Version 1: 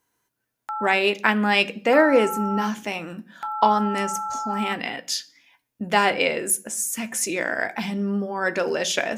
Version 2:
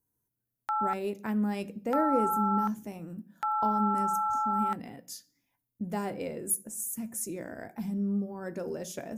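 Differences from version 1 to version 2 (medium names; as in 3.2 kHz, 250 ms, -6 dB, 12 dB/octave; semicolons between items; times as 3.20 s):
speech: add FFT filter 120 Hz 0 dB, 3.1 kHz -28 dB, 13 kHz -3 dB; background: send -7.5 dB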